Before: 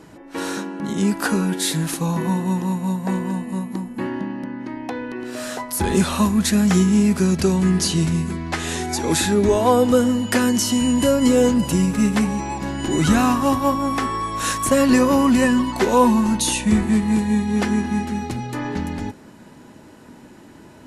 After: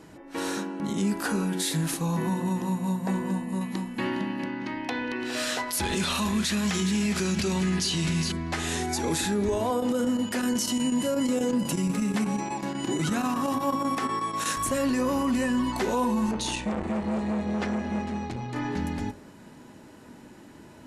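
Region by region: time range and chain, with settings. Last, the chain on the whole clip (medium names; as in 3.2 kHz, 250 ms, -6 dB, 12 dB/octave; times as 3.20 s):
3.61–8.32 s: peaking EQ 3.3 kHz +10.5 dB 2.3 oct + delay 411 ms -12.5 dB
9.70–14.57 s: high-pass 130 Hz 24 dB/octave + square tremolo 8.2 Hz, depth 60%, duty 85%
16.31–18.56 s: distance through air 81 m + hum notches 50/100/150/200/250/300/350 Hz + transformer saturation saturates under 910 Hz
whole clip: de-hum 45.27 Hz, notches 38; peak limiter -15 dBFS; trim -3.5 dB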